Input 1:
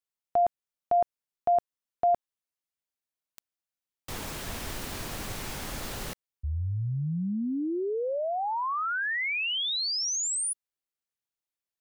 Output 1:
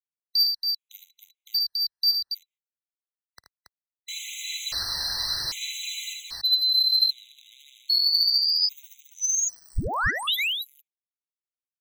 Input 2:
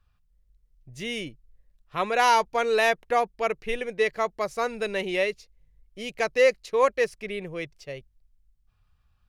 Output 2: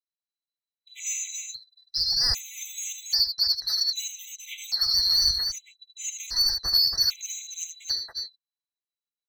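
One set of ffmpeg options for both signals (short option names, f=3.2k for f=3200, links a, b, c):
-filter_complex "[0:a]afftfilt=real='real(if(lt(b,736),b+184*(1-2*mod(floor(b/184),2)),b),0)':imag='imag(if(lt(b,736),b+184*(1-2*mod(floor(b/184),2)),b),0)':win_size=2048:overlap=0.75,lowpass=f=2.1k:p=1,agate=range=-43dB:threshold=-57dB:ratio=16:release=95:detection=rms,tiltshelf=f=850:g=-10,acrossover=split=110[a][b];[a]dynaudnorm=f=110:g=11:m=14dB[c];[b]alimiter=limit=-18dB:level=0:latency=1:release=101[d];[c][d]amix=inputs=2:normalize=0,aphaser=in_gain=1:out_gain=1:delay=1.2:decay=0.45:speed=0.88:type=sinusoidal,asoftclip=type=tanh:threshold=-21.5dB,aecho=1:1:55|78|279:0.119|0.447|0.531,afftfilt=real='re*gt(sin(2*PI*0.63*pts/sr)*(1-2*mod(floor(b*sr/1024/2000),2)),0)':imag='im*gt(sin(2*PI*0.63*pts/sr)*(1-2*mod(floor(b*sr/1024/2000),2)),0)':win_size=1024:overlap=0.75,volume=5dB"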